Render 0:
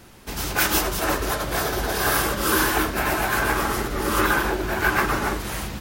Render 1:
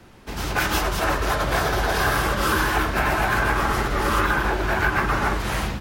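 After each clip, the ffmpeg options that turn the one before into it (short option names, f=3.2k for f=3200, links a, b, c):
-filter_complex "[0:a]dynaudnorm=f=300:g=3:m=10dB,lowpass=f=3k:p=1,acrossover=split=190|530[a][b][c];[a]acompressor=threshold=-23dB:ratio=4[d];[b]acompressor=threshold=-35dB:ratio=4[e];[c]acompressor=threshold=-20dB:ratio=4[f];[d][e][f]amix=inputs=3:normalize=0"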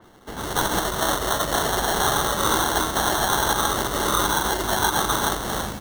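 -af "lowshelf=f=140:g=-10.5,acrusher=samples=18:mix=1:aa=0.000001,adynamicequalizer=threshold=0.01:dfrequency=3800:dqfactor=0.7:tfrequency=3800:tqfactor=0.7:attack=5:release=100:ratio=0.375:range=2.5:mode=boostabove:tftype=highshelf"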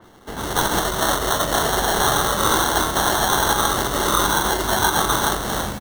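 -filter_complex "[0:a]asplit=2[a][b];[b]adelay=24,volume=-11dB[c];[a][c]amix=inputs=2:normalize=0,volume=2.5dB"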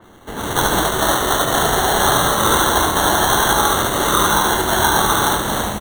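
-af "asuperstop=centerf=5000:order=4:qfactor=3.3,aecho=1:1:72.89|215.7:0.631|0.316,volume=2dB"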